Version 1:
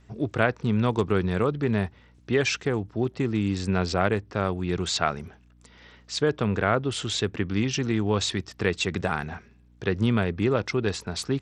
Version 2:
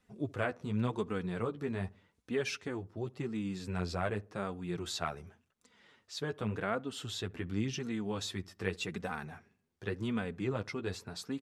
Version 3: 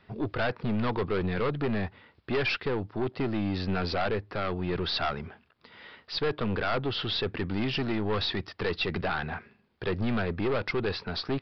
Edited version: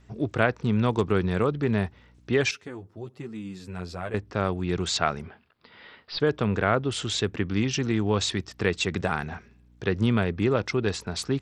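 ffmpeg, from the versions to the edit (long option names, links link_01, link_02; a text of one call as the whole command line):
ffmpeg -i take0.wav -i take1.wav -i take2.wav -filter_complex "[0:a]asplit=3[link_01][link_02][link_03];[link_01]atrim=end=2.512[link_04];[1:a]atrim=start=2.508:end=4.142[link_05];[link_02]atrim=start=4.138:end=5.222[link_06];[2:a]atrim=start=5.218:end=6.202[link_07];[link_03]atrim=start=6.198[link_08];[link_04][link_05]acrossfade=duration=0.004:curve1=hsin:curve2=hsin[link_09];[link_09][link_06]acrossfade=duration=0.004:curve1=hsin:curve2=hsin[link_10];[link_10][link_07]acrossfade=duration=0.004:curve1=hsin:curve2=hsin[link_11];[link_11][link_08]acrossfade=duration=0.004:curve1=hsin:curve2=hsin" out.wav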